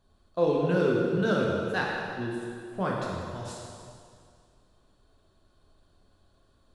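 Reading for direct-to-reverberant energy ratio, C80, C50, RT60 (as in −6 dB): −3.5 dB, 1.0 dB, −0.5 dB, 2.2 s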